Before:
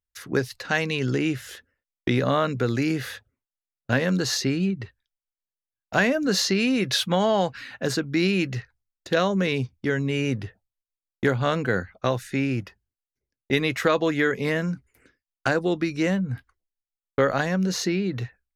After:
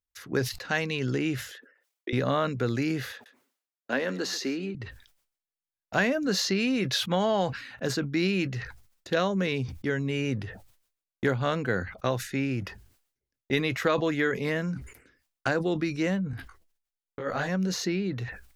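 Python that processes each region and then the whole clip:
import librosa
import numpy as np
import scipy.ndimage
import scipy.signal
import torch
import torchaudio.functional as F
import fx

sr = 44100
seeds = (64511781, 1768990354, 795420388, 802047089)

y = fx.chain(x, sr, fx.envelope_sharpen(power=1.5),
    fx.highpass(hz=390.0, slope=24), at=(1.51, 2.13))
y = fx.chain(y, sr, fx.highpass(hz=240.0, slope=24),
    fx.high_shelf(hz=4000.0, db=-4.0),
    fx.echo_single(ms=137, db=-17.5), at=(3.12, 4.75))
y = fx.chain(y, sr, fx.over_compress(threshold_db=-22.0, ratio=-0.5),
    fx.detune_double(cents=33), at=(16.31, 17.49))
y = fx.dynamic_eq(y, sr, hz=9200.0, q=3.1, threshold_db=-56.0, ratio=4.0, max_db=-6)
y = fx.sustainer(y, sr, db_per_s=100.0)
y = y * librosa.db_to_amplitude(-4.0)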